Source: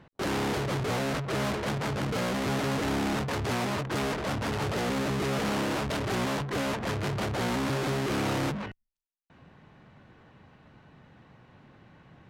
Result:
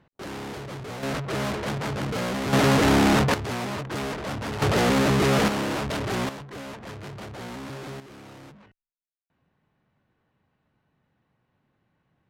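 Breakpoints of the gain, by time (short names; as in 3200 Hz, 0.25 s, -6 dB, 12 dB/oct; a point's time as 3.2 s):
-6.5 dB
from 1.03 s +1.5 dB
from 2.53 s +10 dB
from 3.34 s -0.5 dB
from 4.62 s +8.5 dB
from 5.48 s +2 dB
from 6.29 s -8 dB
from 8 s -17 dB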